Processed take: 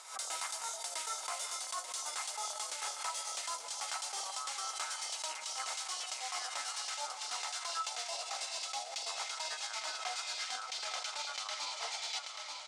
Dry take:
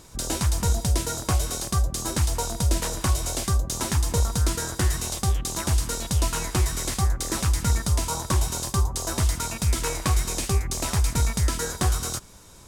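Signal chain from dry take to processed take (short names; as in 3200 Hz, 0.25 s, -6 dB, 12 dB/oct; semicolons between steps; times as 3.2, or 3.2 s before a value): gliding pitch shift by -9 st starting unshifted; elliptic band-pass 730–9800 Hz, stop band 80 dB; in parallel at -9.5 dB: soft clip -26.5 dBFS, distortion -15 dB; on the sum: echo 0.886 s -14 dB; reverse; compressor 6:1, threshold -38 dBFS, peak gain reduction 14.5 dB; reverse; small resonant body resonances 1300/2100 Hz, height 14 dB, ringing for 95 ms; backwards sustainer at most 98 dB/s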